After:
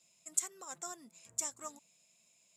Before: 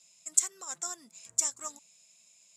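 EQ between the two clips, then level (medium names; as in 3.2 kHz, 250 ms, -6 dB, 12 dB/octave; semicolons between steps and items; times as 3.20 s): peaking EQ 1.4 kHz -3.5 dB 1.5 oct; peaking EQ 6.1 kHz -10 dB 2 oct; +1.0 dB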